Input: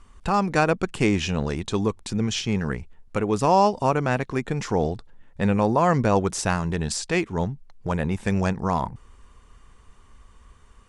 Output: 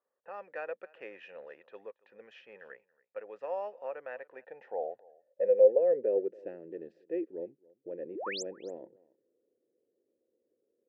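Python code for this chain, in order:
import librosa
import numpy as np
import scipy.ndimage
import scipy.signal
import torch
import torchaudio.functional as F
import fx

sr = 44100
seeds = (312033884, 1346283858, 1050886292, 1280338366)

p1 = scipy.signal.sosfilt(scipy.signal.butter(2, 80.0, 'highpass', fs=sr, output='sos'), x)
p2 = fx.env_lowpass(p1, sr, base_hz=770.0, full_db=-20.5)
p3 = fx.vowel_filter(p2, sr, vowel='e')
p4 = fx.filter_sweep_bandpass(p3, sr, from_hz=1100.0, to_hz=330.0, start_s=4.1, end_s=6.43, q=5.1)
p5 = fx.spec_paint(p4, sr, seeds[0], shape='rise', start_s=8.15, length_s=0.28, low_hz=270.0, high_hz=8100.0, level_db=-47.0)
p6 = p5 + fx.echo_single(p5, sr, ms=279, db=-24.0, dry=0)
y = p6 * 10.0 ** (9.0 / 20.0)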